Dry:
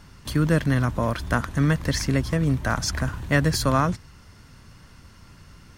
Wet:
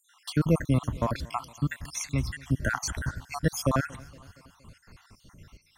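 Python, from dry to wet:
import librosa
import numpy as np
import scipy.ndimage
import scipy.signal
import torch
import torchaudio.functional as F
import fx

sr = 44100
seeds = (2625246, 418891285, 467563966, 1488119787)

y = fx.spec_dropout(x, sr, seeds[0], share_pct=61)
y = fx.peak_eq(y, sr, hz=490.0, db=-10.5, octaves=1.8, at=(1.56, 2.52))
y = fx.echo_feedback(y, sr, ms=233, feedback_pct=58, wet_db=-23.0)
y = y * 10.0 ** (-1.0 / 20.0)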